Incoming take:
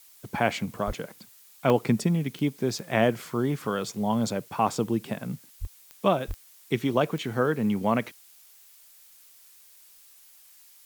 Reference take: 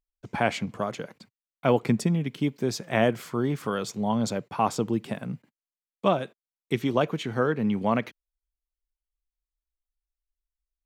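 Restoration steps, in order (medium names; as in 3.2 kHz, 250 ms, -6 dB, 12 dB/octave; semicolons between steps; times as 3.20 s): de-click; de-plosive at 0.86/5.60/6.27 s; interpolate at 1.70/2.38/5.65/6.31/7.34 s, 1.4 ms; noise reduction 30 dB, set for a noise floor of -54 dBFS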